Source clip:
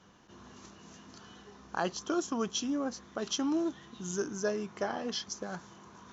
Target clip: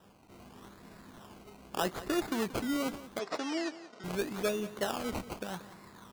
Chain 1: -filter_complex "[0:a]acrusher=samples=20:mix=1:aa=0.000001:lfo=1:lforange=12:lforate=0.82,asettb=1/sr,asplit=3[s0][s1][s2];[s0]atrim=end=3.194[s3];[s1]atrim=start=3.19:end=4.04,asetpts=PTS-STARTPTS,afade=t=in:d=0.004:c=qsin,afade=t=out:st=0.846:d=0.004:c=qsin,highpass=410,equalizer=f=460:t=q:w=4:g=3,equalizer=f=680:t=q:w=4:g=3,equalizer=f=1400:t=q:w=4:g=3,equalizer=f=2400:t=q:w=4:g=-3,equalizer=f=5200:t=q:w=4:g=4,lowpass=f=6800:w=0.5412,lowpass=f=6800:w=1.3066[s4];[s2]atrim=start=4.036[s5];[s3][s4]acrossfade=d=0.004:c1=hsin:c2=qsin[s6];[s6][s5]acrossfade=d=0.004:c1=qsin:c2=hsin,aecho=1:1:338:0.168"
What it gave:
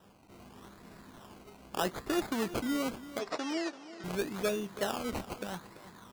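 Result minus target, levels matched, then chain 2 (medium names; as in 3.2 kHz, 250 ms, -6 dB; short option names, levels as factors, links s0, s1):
echo 157 ms late
-filter_complex "[0:a]acrusher=samples=20:mix=1:aa=0.000001:lfo=1:lforange=12:lforate=0.82,asettb=1/sr,asplit=3[s0][s1][s2];[s0]atrim=end=3.194[s3];[s1]atrim=start=3.19:end=4.04,asetpts=PTS-STARTPTS,afade=t=in:d=0.004:c=qsin,afade=t=out:st=0.846:d=0.004:c=qsin,highpass=410,equalizer=f=460:t=q:w=4:g=3,equalizer=f=680:t=q:w=4:g=3,equalizer=f=1400:t=q:w=4:g=3,equalizer=f=2400:t=q:w=4:g=-3,equalizer=f=5200:t=q:w=4:g=4,lowpass=f=6800:w=0.5412,lowpass=f=6800:w=1.3066[s4];[s2]atrim=start=4.036[s5];[s3][s4]acrossfade=d=0.004:c1=hsin:c2=qsin[s6];[s6][s5]acrossfade=d=0.004:c1=qsin:c2=hsin,aecho=1:1:181:0.168"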